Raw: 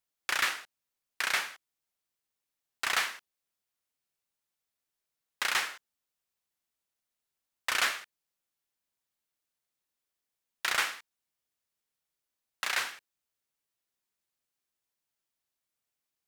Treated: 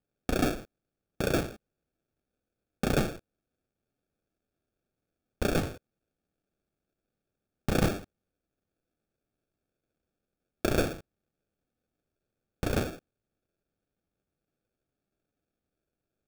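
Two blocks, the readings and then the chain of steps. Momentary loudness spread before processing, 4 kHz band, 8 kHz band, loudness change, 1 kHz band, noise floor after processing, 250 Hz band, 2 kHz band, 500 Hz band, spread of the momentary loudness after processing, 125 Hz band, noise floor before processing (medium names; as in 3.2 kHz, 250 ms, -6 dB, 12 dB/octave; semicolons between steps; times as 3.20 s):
12 LU, -7.5 dB, -5.0 dB, 0.0 dB, -2.0 dB, under -85 dBFS, +26.5 dB, -8.0 dB, +16.5 dB, 12 LU, no reading, under -85 dBFS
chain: square wave that keeps the level; sample-rate reducer 1 kHz, jitter 0%; trim -1 dB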